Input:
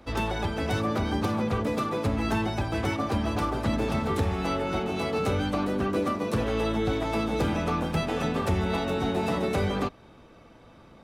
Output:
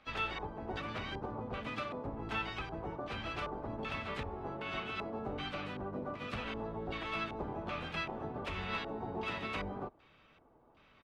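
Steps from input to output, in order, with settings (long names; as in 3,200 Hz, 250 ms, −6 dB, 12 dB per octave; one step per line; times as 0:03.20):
first-order pre-emphasis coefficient 0.9
auto-filter low-pass square 1.3 Hz 840–2,600 Hz
pitch-shifted copies added −12 semitones −1 dB, +4 semitones −11 dB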